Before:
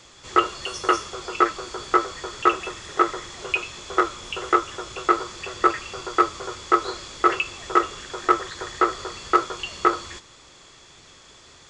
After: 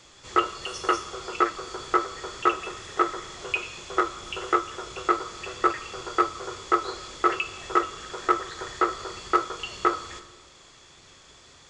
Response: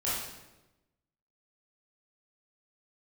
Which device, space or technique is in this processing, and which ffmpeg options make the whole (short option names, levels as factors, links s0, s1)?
compressed reverb return: -filter_complex "[0:a]asplit=2[s0][s1];[1:a]atrim=start_sample=2205[s2];[s1][s2]afir=irnorm=-1:irlink=0,acompressor=threshold=0.141:ratio=6,volume=0.188[s3];[s0][s3]amix=inputs=2:normalize=0,volume=0.596"